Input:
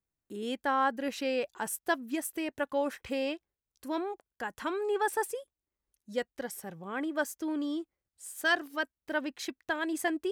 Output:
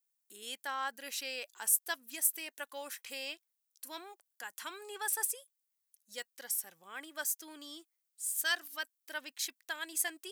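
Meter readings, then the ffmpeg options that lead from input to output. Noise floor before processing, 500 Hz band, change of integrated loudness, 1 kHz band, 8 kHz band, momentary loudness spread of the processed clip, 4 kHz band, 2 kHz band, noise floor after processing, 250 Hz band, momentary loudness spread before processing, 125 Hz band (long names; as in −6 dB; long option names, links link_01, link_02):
below −85 dBFS, −15.5 dB, −2.5 dB, −10.0 dB, +8.5 dB, 16 LU, +1.0 dB, −5.5 dB, −84 dBFS, −20.5 dB, 11 LU, below −20 dB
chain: -af "aderivative,volume=7dB"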